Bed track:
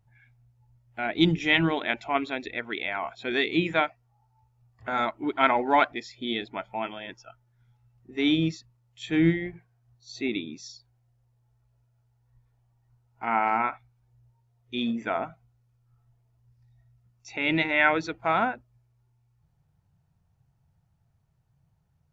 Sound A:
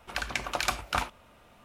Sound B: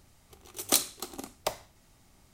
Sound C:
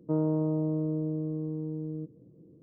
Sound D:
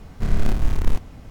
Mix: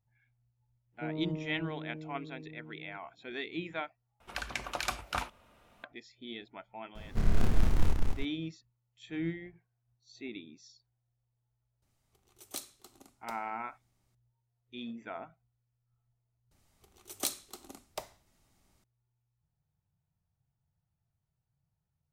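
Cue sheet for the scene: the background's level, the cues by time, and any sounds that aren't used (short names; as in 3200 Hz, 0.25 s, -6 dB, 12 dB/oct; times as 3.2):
bed track -13.5 dB
0.92 add C -10.5 dB, fades 0.02 s + upward expander, over -41 dBFS
4.2 replace with A -5.5 dB
6.95 add D -6.5 dB + warbling echo 0.198 s, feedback 31%, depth 218 cents, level -3 dB
11.82 add B -16.5 dB
16.51 replace with B -9 dB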